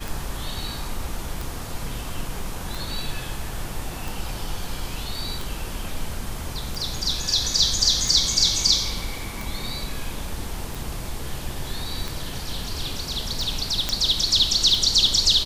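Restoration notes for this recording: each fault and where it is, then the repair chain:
scratch tick 45 rpm
0:13.89: click −7 dBFS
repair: click removal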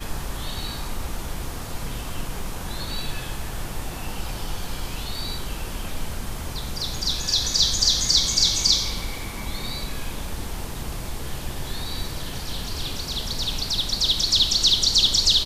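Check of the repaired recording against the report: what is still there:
none of them is left

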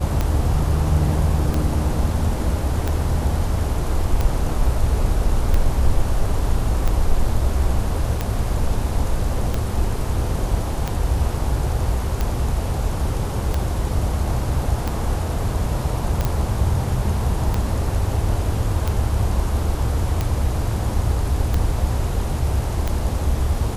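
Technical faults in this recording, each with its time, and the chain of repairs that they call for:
scratch tick 45 rpm −9 dBFS
0:16.25: click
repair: click removal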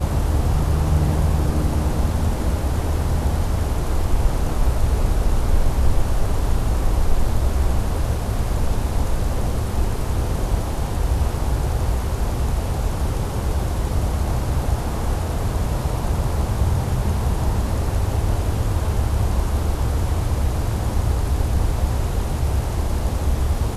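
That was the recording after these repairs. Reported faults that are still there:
none of them is left

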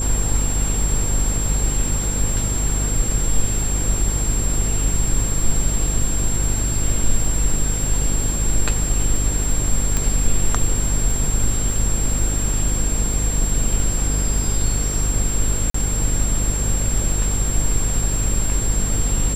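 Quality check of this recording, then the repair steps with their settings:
mains buzz 50 Hz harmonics 10 −23 dBFS
surface crackle 36 per second −27 dBFS
whistle 7,500 Hz −24 dBFS
0:09.97: click
0:15.70–0:15.74: drop-out 44 ms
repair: click removal
notch filter 7,500 Hz, Q 30
hum removal 50 Hz, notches 10
repair the gap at 0:15.70, 44 ms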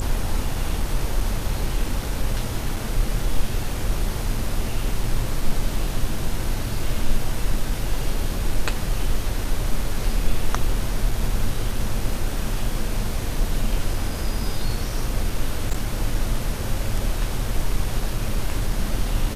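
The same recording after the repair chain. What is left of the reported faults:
0:09.97: click

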